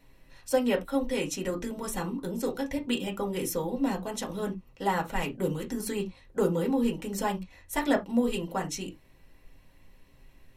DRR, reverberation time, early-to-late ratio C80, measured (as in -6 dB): 0.5 dB, no single decay rate, 28.0 dB